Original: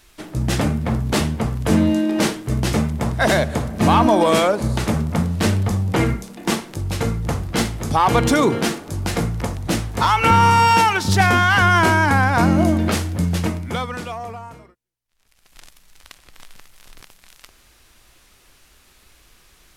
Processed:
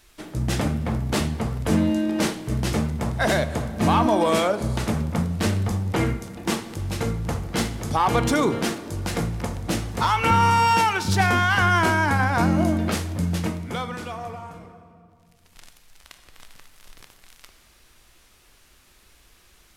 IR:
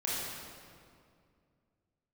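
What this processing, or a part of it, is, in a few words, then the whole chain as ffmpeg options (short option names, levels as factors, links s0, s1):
compressed reverb return: -filter_complex "[0:a]asplit=2[s0][s1];[1:a]atrim=start_sample=2205[s2];[s1][s2]afir=irnorm=-1:irlink=0,acompressor=threshold=0.1:ratio=4,volume=0.266[s3];[s0][s3]amix=inputs=2:normalize=0,bandreject=f=135.2:t=h:w=4,bandreject=f=270.4:t=h:w=4,bandreject=f=405.6:t=h:w=4,bandreject=f=540.8:t=h:w=4,bandreject=f=676:t=h:w=4,bandreject=f=811.2:t=h:w=4,bandreject=f=946.4:t=h:w=4,bandreject=f=1081.6:t=h:w=4,bandreject=f=1216.8:t=h:w=4,bandreject=f=1352:t=h:w=4,bandreject=f=1487.2:t=h:w=4,bandreject=f=1622.4:t=h:w=4,bandreject=f=1757.6:t=h:w=4,bandreject=f=1892.8:t=h:w=4,bandreject=f=2028:t=h:w=4,bandreject=f=2163.2:t=h:w=4,bandreject=f=2298.4:t=h:w=4,bandreject=f=2433.6:t=h:w=4,bandreject=f=2568.8:t=h:w=4,bandreject=f=2704:t=h:w=4,bandreject=f=2839.2:t=h:w=4,bandreject=f=2974.4:t=h:w=4,bandreject=f=3109.6:t=h:w=4,bandreject=f=3244.8:t=h:w=4,bandreject=f=3380:t=h:w=4,bandreject=f=3515.2:t=h:w=4,bandreject=f=3650.4:t=h:w=4,bandreject=f=3785.6:t=h:w=4,bandreject=f=3920.8:t=h:w=4,bandreject=f=4056:t=h:w=4,bandreject=f=4191.2:t=h:w=4,bandreject=f=4326.4:t=h:w=4,bandreject=f=4461.6:t=h:w=4,bandreject=f=4596.8:t=h:w=4,volume=0.562"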